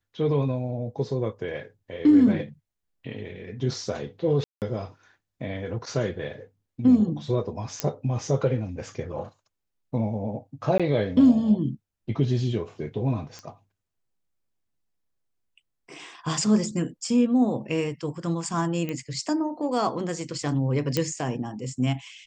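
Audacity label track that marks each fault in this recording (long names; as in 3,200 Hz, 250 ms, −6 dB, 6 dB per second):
4.440000	4.620000	drop-out 178 ms
7.800000	7.800000	click −9 dBFS
10.780000	10.800000	drop-out 16 ms
13.390000	13.390000	click −25 dBFS
18.890000	18.890000	click −18 dBFS
20.970000	20.970000	click −9 dBFS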